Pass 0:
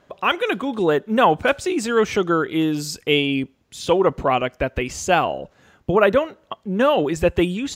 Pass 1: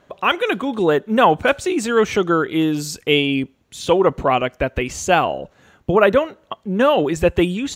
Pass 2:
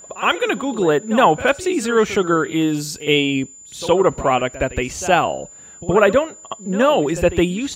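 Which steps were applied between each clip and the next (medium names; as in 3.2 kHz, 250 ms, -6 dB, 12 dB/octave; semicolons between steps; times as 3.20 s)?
band-stop 5 kHz, Q 13; trim +2 dB
pre-echo 68 ms -15 dB; whistle 7.1 kHz -39 dBFS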